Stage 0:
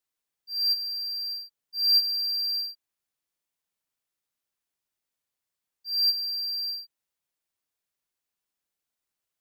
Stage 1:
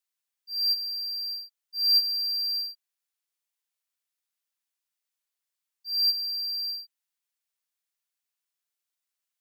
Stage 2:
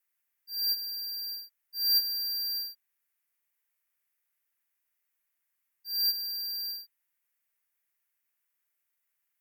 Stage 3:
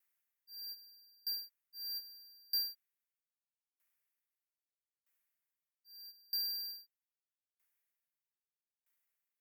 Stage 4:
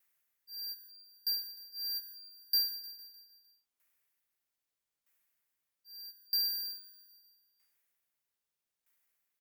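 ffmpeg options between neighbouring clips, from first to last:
-af "highpass=f=1.5k:p=1"
-af "equalizer=f=2k:t=o:w=1:g=9,equalizer=f=4k:t=o:w=1:g=-9,equalizer=f=8k:t=o:w=1:g=-4,equalizer=f=16k:t=o:w=1:g=9,volume=1dB"
-af "aeval=exprs='val(0)*pow(10,-34*if(lt(mod(0.79*n/s,1),2*abs(0.79)/1000),1-mod(0.79*n/s,1)/(2*abs(0.79)/1000),(mod(0.79*n/s,1)-2*abs(0.79)/1000)/(1-2*abs(0.79)/1000))/20)':c=same,volume=1dB"
-af "aecho=1:1:152|304|456|608|760|912:0.251|0.138|0.076|0.0418|0.023|0.0126,volume=5.5dB"

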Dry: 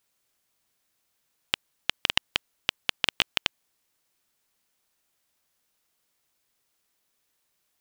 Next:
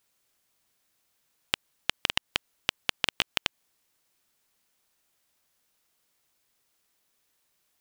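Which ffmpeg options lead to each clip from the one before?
-af "acompressor=threshold=-23dB:ratio=5,volume=1.5dB"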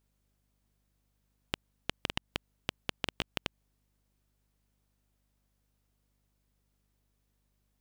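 -af "tiltshelf=f=650:g=7,aeval=exprs='val(0)+0.000251*(sin(2*PI*50*n/s)+sin(2*PI*2*50*n/s)/2+sin(2*PI*3*50*n/s)/3+sin(2*PI*4*50*n/s)/4+sin(2*PI*5*50*n/s)/5)':c=same,volume=-3.5dB"

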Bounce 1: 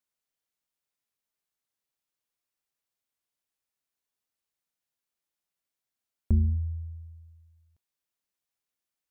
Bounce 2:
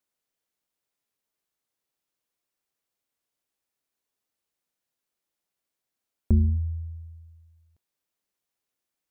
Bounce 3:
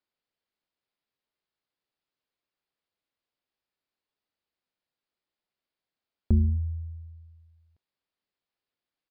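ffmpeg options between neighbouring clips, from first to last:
-af "equalizer=f=380:t=o:w=2.1:g=4.5,volume=2dB"
-af "aresample=11025,aresample=44100,volume=-1.5dB"

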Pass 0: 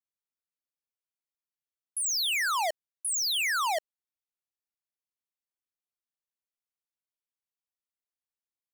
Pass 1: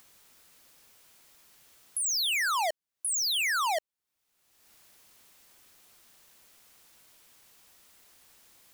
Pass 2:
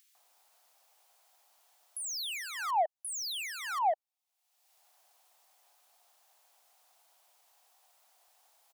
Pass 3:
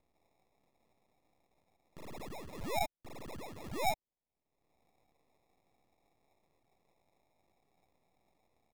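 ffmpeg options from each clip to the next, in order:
-af "acompressor=mode=upward:threshold=-32dB:ratio=2.5"
-filter_complex "[0:a]highpass=f=740:t=q:w=4.4,acrossover=split=1900[a][b];[a]adelay=150[c];[c][b]amix=inputs=2:normalize=0,volume=-8.5dB"
-af "aeval=exprs='if(lt(val(0),0),0.251*val(0),val(0))':c=same,highshelf=f=3.7k:g=-8.5,acrusher=samples=29:mix=1:aa=0.000001,volume=-1dB"

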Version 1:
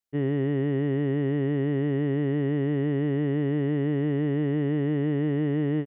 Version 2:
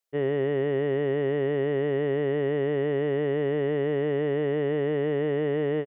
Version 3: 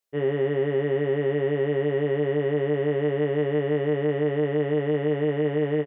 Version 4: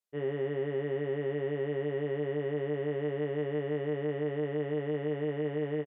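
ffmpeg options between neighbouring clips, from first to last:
-af "firequalizer=gain_entry='entry(290,0);entry(460,15);entry(860,10)':delay=0.05:min_phase=1,volume=-6.5dB"
-filter_complex "[0:a]asplit=2[a][b];[b]adelay=20,volume=-4dB[c];[a][c]amix=inputs=2:normalize=0"
-af "aresample=32000,aresample=44100,volume=-8.5dB"

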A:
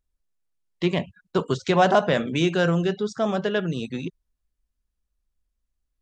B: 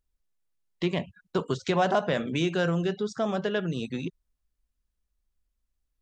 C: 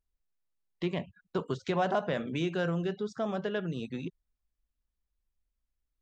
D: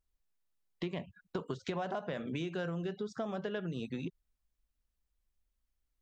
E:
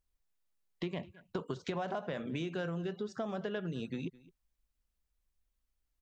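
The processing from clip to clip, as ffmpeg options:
-af "acompressor=threshold=-28dB:ratio=1.5,volume=-1dB"
-af "highshelf=f=5k:g=-8.5,volume=-4.5dB"
-af "acompressor=threshold=-35dB:ratio=6,volume=1dB"
-af "aecho=1:1:213:0.0841"

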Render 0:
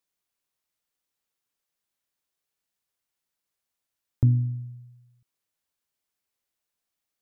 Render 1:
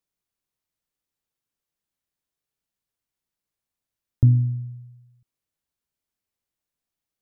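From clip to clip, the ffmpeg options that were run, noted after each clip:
-af "lowshelf=f=320:g=9.5,volume=-4dB"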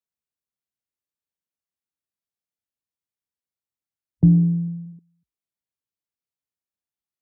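-af "alimiter=limit=-13.5dB:level=0:latency=1:release=441,afreqshift=48,afwtdn=0.0178,volume=7dB"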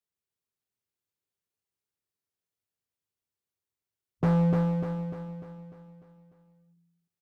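-filter_complex "[0:a]equalizer=f=100:t=o:w=0.33:g=10,equalizer=f=160:t=o:w=0.33:g=3,equalizer=f=400:t=o:w=0.33:g=8,asoftclip=type=hard:threshold=-20dB,asplit=2[a][b];[b]aecho=0:1:298|596|894|1192|1490|1788|2086:0.631|0.322|0.164|0.0837|0.0427|0.0218|0.0111[c];[a][c]amix=inputs=2:normalize=0,volume=-1.5dB"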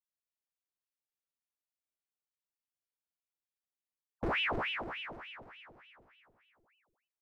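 -af "aeval=exprs='val(0)*sin(2*PI*1500*n/s+1500*0.9/3.4*sin(2*PI*3.4*n/s))':c=same,volume=-7dB"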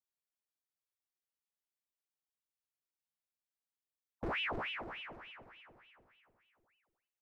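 -filter_complex "[0:a]asplit=2[a][b];[b]adelay=346,lowpass=f=2.4k:p=1,volume=-23dB,asplit=2[c][d];[d]adelay=346,lowpass=f=2.4k:p=1,volume=0.36[e];[a][c][e]amix=inputs=3:normalize=0,volume=-4.5dB"

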